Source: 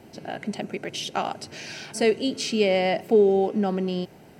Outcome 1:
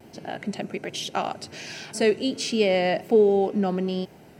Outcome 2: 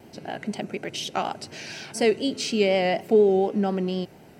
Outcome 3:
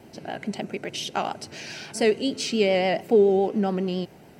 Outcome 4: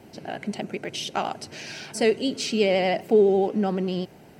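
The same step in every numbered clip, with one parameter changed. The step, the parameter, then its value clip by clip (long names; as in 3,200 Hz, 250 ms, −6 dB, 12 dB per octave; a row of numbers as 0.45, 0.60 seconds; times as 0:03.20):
pitch vibrato, speed: 1.3, 4.1, 7.1, 12 Hertz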